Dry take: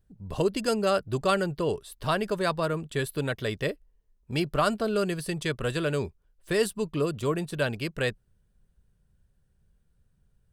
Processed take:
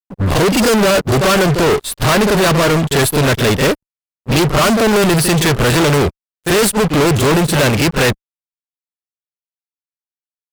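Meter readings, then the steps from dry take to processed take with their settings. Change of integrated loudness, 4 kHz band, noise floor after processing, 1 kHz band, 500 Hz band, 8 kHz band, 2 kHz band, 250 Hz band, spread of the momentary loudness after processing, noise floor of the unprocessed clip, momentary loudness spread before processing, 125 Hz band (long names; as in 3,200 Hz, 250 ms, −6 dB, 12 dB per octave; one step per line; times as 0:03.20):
+15.5 dB, +18.0 dB, below −85 dBFS, +14.5 dB, +13.5 dB, +22.0 dB, +16.0 dB, +16.5 dB, 5 LU, −69 dBFS, 6 LU, +17.5 dB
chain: echo ahead of the sound 42 ms −14 dB
fuzz pedal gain 47 dB, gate −51 dBFS
expander for the loud parts 2.5 to 1, over −35 dBFS
level +3 dB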